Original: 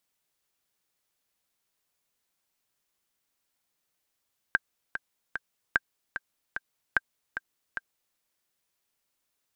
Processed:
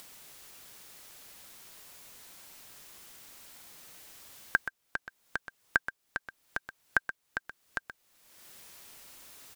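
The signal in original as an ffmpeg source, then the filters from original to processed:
-f lavfi -i "aevalsrc='pow(10,(-8.5-10*gte(mod(t,3*60/149),60/149))/20)*sin(2*PI*1580*mod(t,60/149))*exp(-6.91*mod(t,60/149)/0.03)':d=3.62:s=44100"
-filter_complex "[0:a]acompressor=mode=upward:threshold=-30dB:ratio=2.5,asplit=2[a][b];[b]aecho=0:1:126:0.266[c];[a][c]amix=inputs=2:normalize=0"

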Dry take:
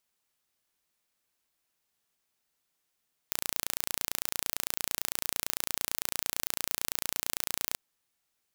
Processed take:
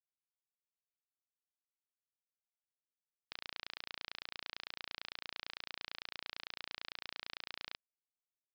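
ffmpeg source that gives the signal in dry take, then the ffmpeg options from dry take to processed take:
-f lavfi -i "aevalsrc='0.708*eq(mod(n,1526),0)':d=4.44:s=44100"
-af "highpass=f=520:p=1,alimiter=limit=-11.5dB:level=0:latency=1,aresample=11025,acrusher=bits=6:mix=0:aa=0.000001,aresample=44100"

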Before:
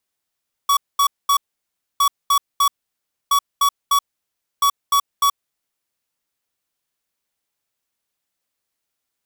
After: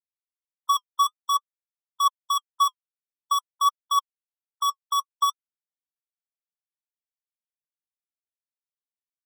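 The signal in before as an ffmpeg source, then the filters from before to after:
-f lavfi -i "aevalsrc='0.178*(2*lt(mod(1130*t,1),0.5)-1)*clip(min(mod(mod(t,1.31),0.3),0.08-mod(mod(t,1.31),0.3))/0.005,0,1)*lt(mod(t,1.31),0.9)':d=5.24:s=44100"
-af "afftfilt=real='re*gte(hypot(re,im),0.0794)':imag='im*gte(hypot(re,im),0.0794)':win_size=1024:overlap=0.75,highshelf=f=5k:g=-5,flanger=delay=1:depth=4.6:regen=54:speed=0.52:shape=triangular"

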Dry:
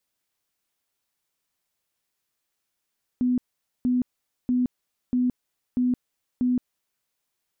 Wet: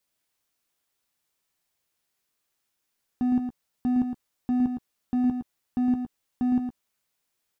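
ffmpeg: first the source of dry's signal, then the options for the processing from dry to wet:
-f lavfi -i "aevalsrc='0.112*sin(2*PI*249*mod(t,0.64))*lt(mod(t,0.64),42/249)':d=3.84:s=44100"
-filter_complex "[0:a]volume=22.5dB,asoftclip=hard,volume=-22.5dB,asplit=2[a][b];[b]adelay=13,volume=-10.5dB[c];[a][c]amix=inputs=2:normalize=0,aecho=1:1:112:0.473"

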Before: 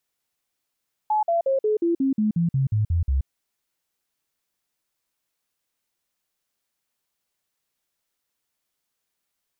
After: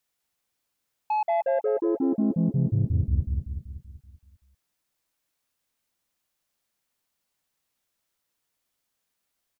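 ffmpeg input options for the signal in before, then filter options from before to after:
-f lavfi -i "aevalsrc='0.126*clip(min(mod(t,0.18),0.13-mod(t,0.18))/0.005,0,1)*sin(2*PI*854*pow(2,-floor(t/0.18)/3)*mod(t,0.18))':d=2.16:s=44100"
-filter_complex "[0:a]equalizer=f=390:t=o:w=0.42:g=-3,asoftclip=type=tanh:threshold=-21dB,asplit=2[a][b];[b]adelay=191,lowpass=f=890:p=1,volume=-3dB,asplit=2[c][d];[d]adelay=191,lowpass=f=890:p=1,volume=0.52,asplit=2[e][f];[f]adelay=191,lowpass=f=890:p=1,volume=0.52,asplit=2[g][h];[h]adelay=191,lowpass=f=890:p=1,volume=0.52,asplit=2[i][j];[j]adelay=191,lowpass=f=890:p=1,volume=0.52,asplit=2[k][l];[l]adelay=191,lowpass=f=890:p=1,volume=0.52,asplit=2[m][n];[n]adelay=191,lowpass=f=890:p=1,volume=0.52[o];[a][c][e][g][i][k][m][o]amix=inputs=8:normalize=0"

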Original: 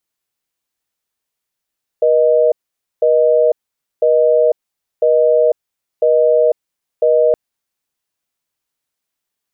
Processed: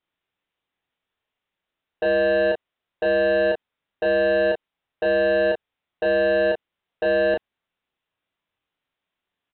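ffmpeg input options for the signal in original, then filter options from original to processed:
-f lavfi -i "aevalsrc='0.266*(sin(2*PI*480*t)+sin(2*PI*620*t))*clip(min(mod(t,1),0.5-mod(t,1))/0.005,0,1)':d=5.32:s=44100"
-af "aresample=8000,asoftclip=type=tanh:threshold=-19.5dB,aresample=44100,aecho=1:1:24|35:0.531|0.631"

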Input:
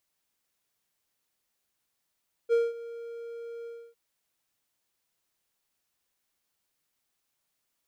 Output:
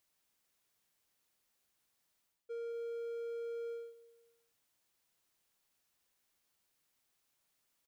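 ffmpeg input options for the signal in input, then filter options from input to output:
-f lavfi -i "aevalsrc='0.141*(1-4*abs(mod(466*t+0.25,1)-0.5))':d=1.455:s=44100,afade=t=in:d=0.037,afade=t=out:st=0.037:d=0.201:silence=0.119,afade=t=out:st=1.17:d=0.285"
-af "areverse,acompressor=threshold=-37dB:ratio=6,areverse,aecho=1:1:202|404|606:0.112|0.0494|0.0217,alimiter=level_in=12.5dB:limit=-24dB:level=0:latency=1,volume=-12.5dB"

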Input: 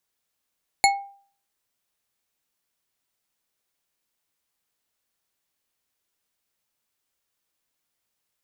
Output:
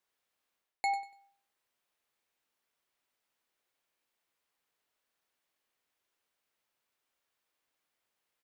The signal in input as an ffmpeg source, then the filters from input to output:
-f lavfi -i "aevalsrc='0.224*pow(10,-3*t/0.48)*sin(2*PI*796*t)+0.178*pow(10,-3*t/0.236)*sin(2*PI*2194.6*t)+0.141*pow(10,-3*t/0.147)*sin(2*PI*4301.6*t)+0.112*pow(10,-3*t/0.104)*sin(2*PI*7110.7*t)+0.0891*pow(10,-3*t/0.078)*sin(2*PI*10618.6*t)':d=0.89:s=44100"
-af "bass=f=250:g=-8,treble=f=4k:g=-8,areverse,acompressor=threshold=-30dB:ratio=6,areverse,aecho=1:1:96|192|288:0.316|0.0822|0.0214"

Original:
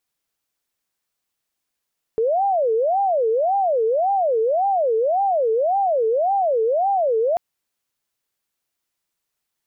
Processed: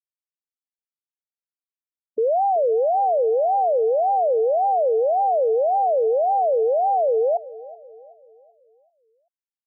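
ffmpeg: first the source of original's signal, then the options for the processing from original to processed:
-f lavfi -i "aevalsrc='0.158*sin(2*PI*(619.5*t-179.5/(2*PI*1.8)*sin(2*PI*1.8*t)))':d=5.19:s=44100"
-filter_complex "[0:a]afftfilt=real='re*gte(hypot(re,im),0.1)':imag='im*gte(hypot(re,im),0.1)':win_size=1024:overlap=0.75,asplit=2[a][b];[b]adelay=382,lowpass=f=820:p=1,volume=-17dB,asplit=2[c][d];[d]adelay=382,lowpass=f=820:p=1,volume=0.52,asplit=2[e][f];[f]adelay=382,lowpass=f=820:p=1,volume=0.52,asplit=2[g][h];[h]adelay=382,lowpass=f=820:p=1,volume=0.52,asplit=2[i][j];[j]adelay=382,lowpass=f=820:p=1,volume=0.52[k];[a][c][e][g][i][k]amix=inputs=6:normalize=0"

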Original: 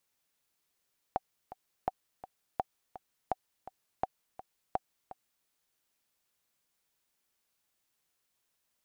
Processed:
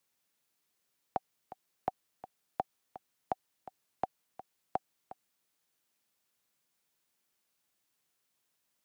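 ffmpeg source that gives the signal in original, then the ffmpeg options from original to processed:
-f lavfi -i "aevalsrc='pow(10,(-16-15*gte(mod(t,2*60/167),60/167))/20)*sin(2*PI*757*mod(t,60/167))*exp(-6.91*mod(t,60/167)/0.03)':d=4.31:s=44100"
-filter_complex "[0:a]highpass=f=200:p=1,acrossover=split=290|620[a][b][c];[a]acontrast=33[d];[d][b][c]amix=inputs=3:normalize=0"

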